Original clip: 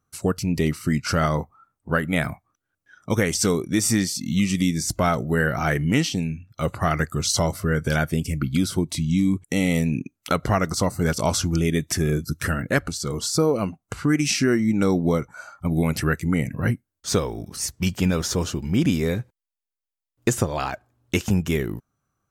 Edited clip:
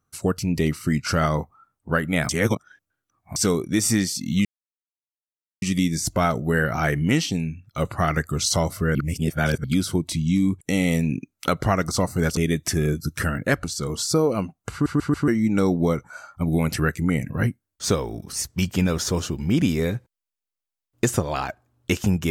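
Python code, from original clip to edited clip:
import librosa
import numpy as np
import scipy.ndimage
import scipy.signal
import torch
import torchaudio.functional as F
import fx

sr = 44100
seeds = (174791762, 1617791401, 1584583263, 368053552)

y = fx.edit(x, sr, fx.reverse_span(start_s=2.29, length_s=1.07),
    fx.insert_silence(at_s=4.45, length_s=1.17),
    fx.reverse_span(start_s=7.78, length_s=0.69),
    fx.cut(start_s=11.2, length_s=0.41),
    fx.stutter_over(start_s=13.96, slice_s=0.14, count=4), tone=tone)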